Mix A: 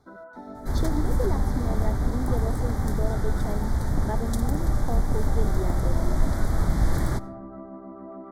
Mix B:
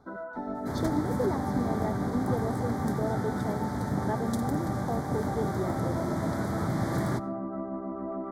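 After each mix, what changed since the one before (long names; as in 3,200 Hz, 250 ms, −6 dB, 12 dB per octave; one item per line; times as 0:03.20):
first sound +5.5 dB
second sound: add high-pass filter 110 Hz 24 dB per octave
master: add high-shelf EQ 4,000 Hz −6 dB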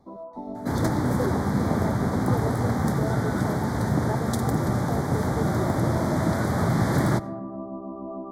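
first sound: add Chebyshev low-pass filter 1,200 Hz, order 8
second sound +7.5 dB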